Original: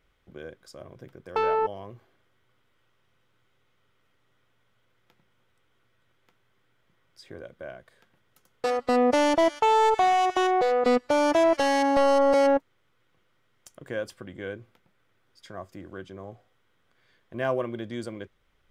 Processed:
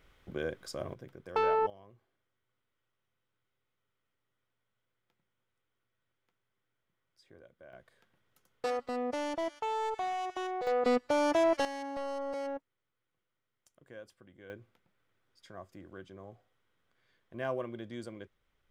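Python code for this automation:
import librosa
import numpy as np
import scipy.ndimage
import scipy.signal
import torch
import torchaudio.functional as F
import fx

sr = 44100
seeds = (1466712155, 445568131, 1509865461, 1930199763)

y = fx.gain(x, sr, db=fx.steps((0.0, 5.5), (0.94, -3.5), (1.7, -15.0), (7.73, -7.0), (8.88, -13.5), (10.67, -6.0), (11.65, -17.0), (14.5, -8.0)))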